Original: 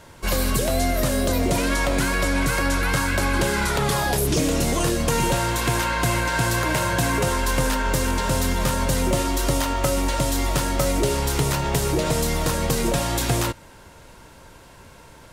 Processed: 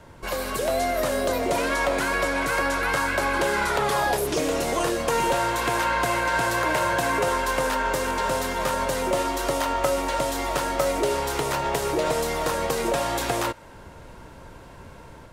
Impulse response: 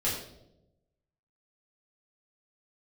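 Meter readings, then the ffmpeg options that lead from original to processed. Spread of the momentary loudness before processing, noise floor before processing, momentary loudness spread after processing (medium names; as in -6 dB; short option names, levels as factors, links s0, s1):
1 LU, -47 dBFS, 3 LU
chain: -filter_complex "[0:a]acrossover=split=380|1100[s0][s1][s2];[s0]acompressor=threshold=0.0112:ratio=6[s3];[s3][s1][s2]amix=inputs=3:normalize=0,highshelf=f=2400:g=-10,dynaudnorm=f=380:g=3:m=1.5"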